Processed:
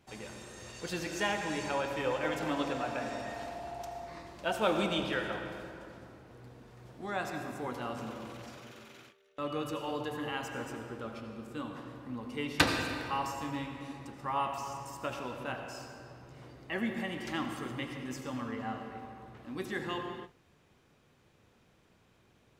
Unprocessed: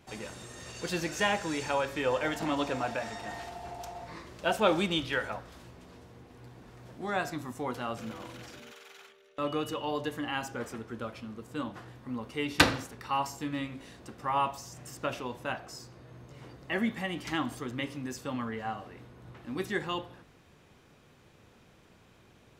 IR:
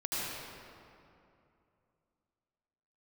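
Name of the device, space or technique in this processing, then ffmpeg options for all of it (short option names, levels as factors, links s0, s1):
keyed gated reverb: -filter_complex "[0:a]asplit=3[s0][s1][s2];[1:a]atrim=start_sample=2205[s3];[s1][s3]afir=irnorm=-1:irlink=0[s4];[s2]apad=whole_len=996630[s5];[s4][s5]sidechaingate=range=0.0224:threshold=0.002:ratio=16:detection=peak,volume=0.422[s6];[s0][s6]amix=inputs=2:normalize=0,volume=0.473"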